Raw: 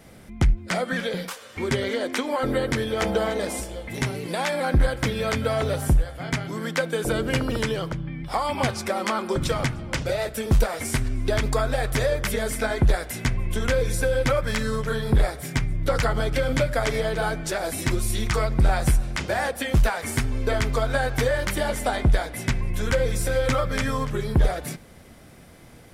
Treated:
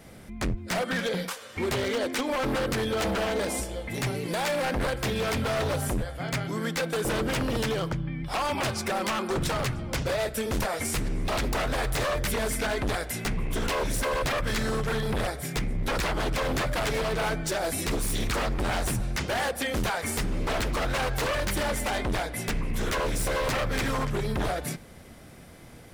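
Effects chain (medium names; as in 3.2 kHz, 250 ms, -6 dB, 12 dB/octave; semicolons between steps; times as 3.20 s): wavefolder -22 dBFS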